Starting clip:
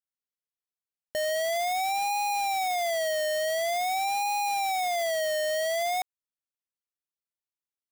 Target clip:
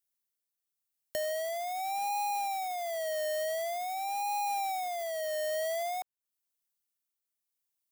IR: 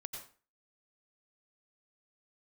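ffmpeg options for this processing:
-filter_complex "[0:a]acrossover=split=550|1300|3900[link_01][link_02][link_03][link_04];[link_01]acompressor=threshold=-47dB:ratio=4[link_05];[link_02]acompressor=threshold=-33dB:ratio=4[link_06];[link_03]acompressor=threshold=-51dB:ratio=4[link_07];[link_04]acompressor=threshold=-53dB:ratio=4[link_08];[link_05][link_06][link_07][link_08]amix=inputs=4:normalize=0,crystalizer=i=2:c=0,tremolo=f=0.9:d=0.36"

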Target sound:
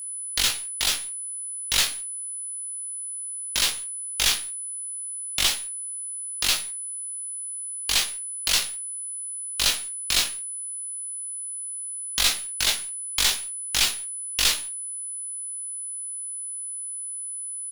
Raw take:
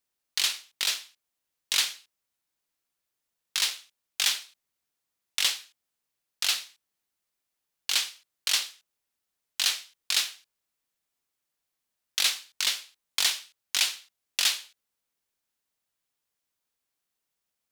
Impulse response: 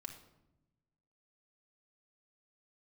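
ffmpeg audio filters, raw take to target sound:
-filter_complex "[0:a]aeval=exprs='(tanh(7.08*val(0)+0.5)-tanh(0.5))/7.08':channel_layout=same,acrossover=split=250|2300[link_01][link_02][link_03];[link_03]acrusher=bits=6:dc=4:mix=0:aa=0.000001[link_04];[link_01][link_02][link_04]amix=inputs=3:normalize=0,aeval=exprs='val(0)+0.0112*sin(2*PI*10000*n/s)':channel_layout=same,aecho=1:1:18|63:0.531|0.126,volume=5dB"

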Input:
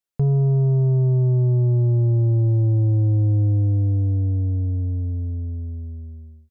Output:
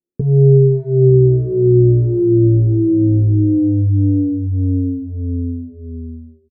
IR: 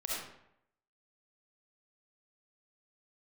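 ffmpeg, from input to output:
-filter_complex "[0:a]lowpass=frequency=380:width_type=q:width=3.7,equalizer=frequency=250:width=0.78:gain=10,asplit=3[link_01][link_02][link_03];[link_01]afade=type=out:start_time=1.08:duration=0.02[link_04];[link_02]tremolo=f=62:d=0.261,afade=type=in:start_time=1.08:duration=0.02,afade=type=out:start_time=3.56:duration=0.02[link_05];[link_03]afade=type=in:start_time=3.56:duration=0.02[link_06];[link_04][link_05][link_06]amix=inputs=3:normalize=0,asplit=2[link_07][link_08];[link_08]adelay=270,highpass=300,lowpass=3400,asoftclip=type=hard:threshold=-12.5dB,volume=-23dB[link_09];[link_07][link_09]amix=inputs=2:normalize=0,asplit=2[link_10][link_11];[link_11]adelay=9.1,afreqshift=1.3[link_12];[link_10][link_12]amix=inputs=2:normalize=1,volume=2.5dB"

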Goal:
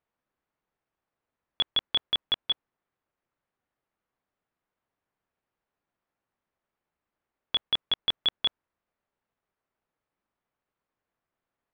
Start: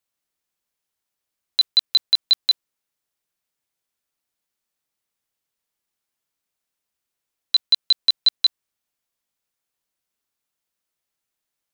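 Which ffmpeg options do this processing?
ffmpeg -i in.wav -af "asetrate=37084,aresample=44100,atempo=1.18921,lowpass=1500,volume=5dB" out.wav

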